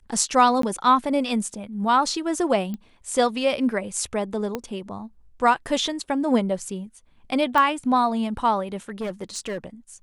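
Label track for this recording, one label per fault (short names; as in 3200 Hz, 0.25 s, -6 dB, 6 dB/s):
0.620000	0.630000	gap 13 ms
2.740000	2.740000	pop -20 dBFS
4.550000	4.550000	pop -13 dBFS
7.580000	7.580000	pop -10 dBFS
8.890000	9.580000	clipped -24.5 dBFS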